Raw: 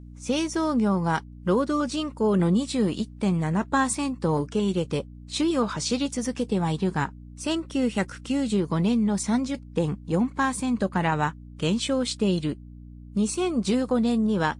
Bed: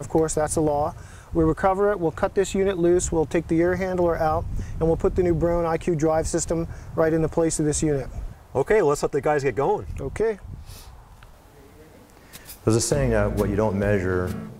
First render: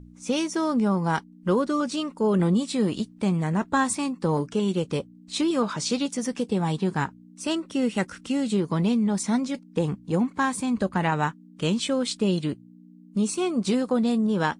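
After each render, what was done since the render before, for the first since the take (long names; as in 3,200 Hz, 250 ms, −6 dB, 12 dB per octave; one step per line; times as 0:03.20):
hum removal 60 Hz, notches 2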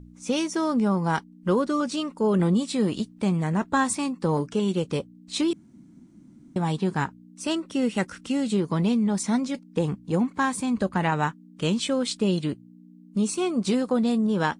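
0:05.53–0:06.56: fill with room tone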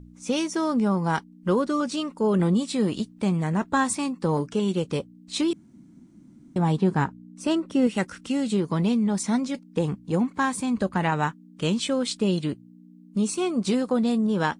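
0:06.58–0:07.87: tilt shelving filter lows +4 dB, about 1,500 Hz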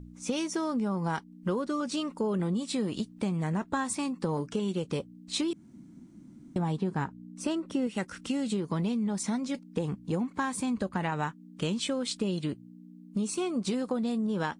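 downward compressor 4 to 1, threshold −28 dBFS, peak gain reduction 10 dB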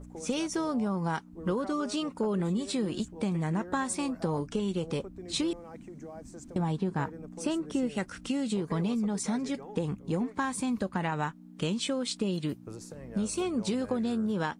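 mix in bed −24 dB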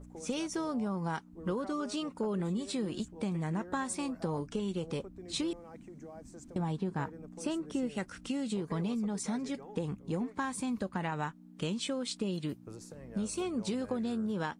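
level −4 dB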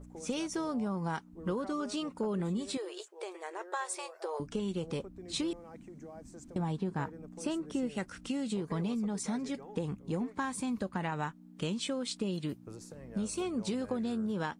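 0:02.77–0:04.40: linear-phase brick-wall high-pass 340 Hz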